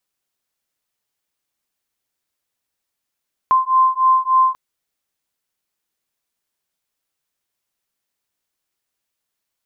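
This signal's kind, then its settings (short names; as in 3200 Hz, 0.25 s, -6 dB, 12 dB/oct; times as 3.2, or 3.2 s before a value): beating tones 1040 Hz, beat 3.4 Hz, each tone -15 dBFS 1.04 s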